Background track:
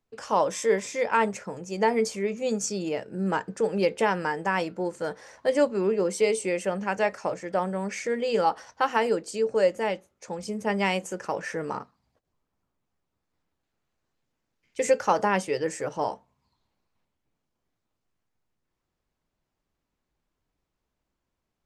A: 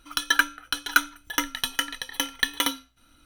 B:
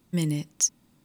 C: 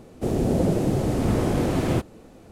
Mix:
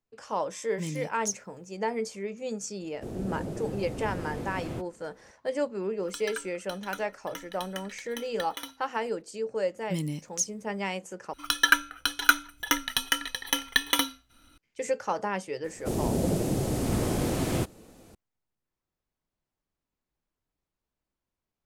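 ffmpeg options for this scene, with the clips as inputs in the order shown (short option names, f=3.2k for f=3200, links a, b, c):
-filter_complex "[2:a]asplit=2[a][b];[3:a]asplit=2[c][d];[1:a]asplit=2[e][f];[0:a]volume=-7dB[g];[e]alimiter=limit=-7dB:level=0:latency=1:release=71[h];[d]highshelf=f=4.1k:g=11.5[i];[g]asplit=2[j][k];[j]atrim=end=11.334[l];[f]atrim=end=3.25[m];[k]atrim=start=14.576[n];[a]atrim=end=1.04,asetpts=PTS-STARTPTS,volume=-8.5dB,afade=t=in:d=0.004:c=hsin,afade=t=out:st=1.036:d=0.004:c=hsin,adelay=650[o];[c]atrim=end=2.51,asetpts=PTS-STARTPTS,volume=-13.5dB,afade=t=in:d=0.004:c=hsin,afade=t=out:st=2.506:d=0.004:c=hsin,adelay=2800[p];[h]atrim=end=3.25,asetpts=PTS-STARTPTS,volume=-14.5dB,afade=t=in:d=0.004:c=hsin,afade=t=out:st=3.246:d=0.004:c=hsin,adelay=5970[q];[b]atrim=end=1.04,asetpts=PTS-STARTPTS,volume=-5.5dB,afade=t=in:d=0.004:c=hsin,afade=t=out:st=1.036:d=0.004:c=hsin,adelay=9770[r];[i]atrim=end=2.51,asetpts=PTS-STARTPTS,volume=-5.5dB,afade=t=in:d=0.004:c=hsin,afade=t=out:st=2.506:d=0.004:c=hsin,adelay=15640[s];[l][m]acrossfade=d=0.004:c1=hsin:c2=hsin[t];[t][n]acrossfade=d=0.004:c1=hsin:c2=hsin[u];[u][o][p][q][r][s]amix=inputs=6:normalize=0"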